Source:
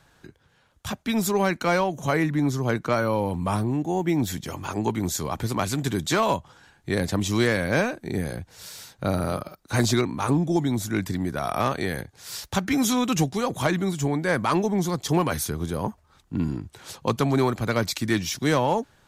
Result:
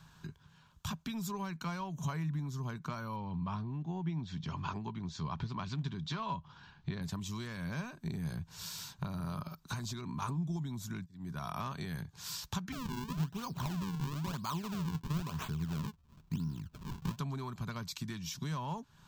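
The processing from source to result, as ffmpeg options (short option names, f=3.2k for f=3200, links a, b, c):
-filter_complex "[0:a]asettb=1/sr,asplit=3[a][b][c];[a]atrim=end=3.164[d];[b]atrim=start=3.16:end=7.02,asetpts=PTS-STARTPTS,afade=t=in:d=0.004:c=qsin,afade=t=out:st=3.856:d=0.004:c=qsin,lowpass=f=4.8k:w=0.5412,lowpass=f=4.8k:w=1.3066[e];[c]atrim=start=7.016[f];[d][e]acrossfade=d=0.004:c1=hsin:c2=qsin[g];[g][f]acrossfade=d=0.004:c1=qsin:c2=hsin,asettb=1/sr,asplit=3[h][i][j];[h]atrim=end=8.064[k];[i]atrim=start=8.06:end=10.22,asetpts=PTS-STARTPTS,afade=t=in:d=0.004:c=qsin,afade=t=out:st=2.156:d=0.004:c=qsin,acompressor=threshold=-25dB:ratio=6:attack=3.2:release=140:knee=1:detection=peak[l];[j]atrim=start=10.216[m];[k][l]acrossfade=d=0.004:c1=hsin:c2=qsin[n];[n][m]acrossfade=d=0.004:c1=qsin:c2=hsin,asettb=1/sr,asplit=3[o][p][q];[o]atrim=end=12.724[r];[p]atrim=start=12.72:end=17.19,asetpts=PTS-STARTPTS,afade=t=in:d=0.004:c=qsin,afade=t=out:st=4.466:d=0.004:c=qsin,acrusher=samples=40:mix=1:aa=0.000001:lfo=1:lforange=64:lforate=1[s];[q]atrim=start=17.186[t];[r][s]acrossfade=d=0.004:c1=hsin:c2=qsin[u];[u][t]acrossfade=d=0.004:c1=qsin:c2=hsin,asplit=2[v][w];[v]atrim=end=11.06,asetpts=PTS-STARTPTS,afade=t=out:st=11.056:d=0.004:c=hsin[x];[w]atrim=start=11.06,asetpts=PTS-STARTPTS,afade=t=in:d=0.9[y];[x][y]concat=n=2:v=0:a=1,equalizer=f=760:w=1:g=-8.5,acompressor=threshold=-37dB:ratio=8,equalizer=f=160:t=o:w=0.33:g=10,equalizer=f=315:t=o:w=0.33:g=-10,equalizer=f=500:t=o:w=0.33:g=-11,equalizer=f=1k:t=o:w=0.33:g=11,equalizer=f=2k:t=o:w=0.33:g=-8,equalizer=f=10k:t=o:w=0.33:g=-11"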